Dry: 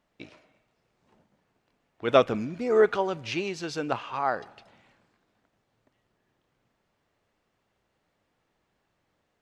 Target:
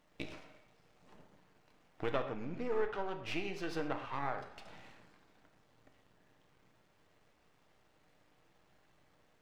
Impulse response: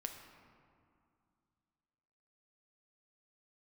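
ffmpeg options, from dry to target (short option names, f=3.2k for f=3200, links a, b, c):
-filter_complex "[0:a]aeval=exprs='if(lt(val(0),0),0.251*val(0),val(0))':c=same,asettb=1/sr,asplit=3[a][b][c];[a]atrim=end=2.114[d];[b]atrim=start=2.11:end=4.38,asetpts=PTS-STARTPTS,afade=t=in:d=0.004:c=qsin,afade=t=out:st=2.266:d=0.004:c=qsin,bass=f=250:g=-3,treble=f=4k:g=-10[e];[c]atrim=start=4.376[f];[d][e]acrossfade=d=0.004:c1=hsin:c2=qsin[g];[g][f]acrossfade=d=0.004:c1=qsin:c2=hsin,acompressor=threshold=-46dB:ratio=3[h];[1:a]atrim=start_sample=2205,atrim=end_sample=6174[i];[h][i]afir=irnorm=-1:irlink=0,volume=10dB"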